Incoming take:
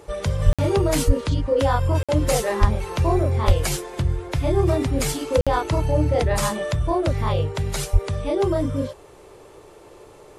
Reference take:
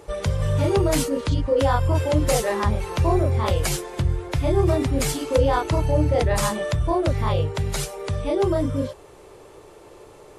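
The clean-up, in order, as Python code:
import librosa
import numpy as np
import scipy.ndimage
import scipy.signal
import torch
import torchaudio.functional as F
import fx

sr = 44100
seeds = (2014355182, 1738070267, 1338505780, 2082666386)

y = fx.fix_deplosive(x, sr, at_s=(0.45, 1.06, 2.6, 3.46, 7.92))
y = fx.fix_interpolate(y, sr, at_s=(0.53, 2.03, 5.41), length_ms=56.0)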